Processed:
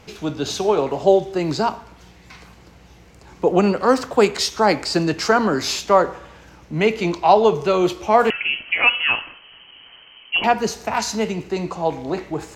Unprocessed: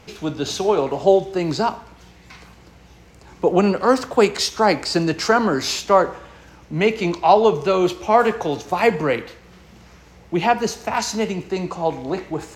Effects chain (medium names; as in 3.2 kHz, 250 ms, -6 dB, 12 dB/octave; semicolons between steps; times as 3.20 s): 8.30–10.44 s: frequency inversion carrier 3.1 kHz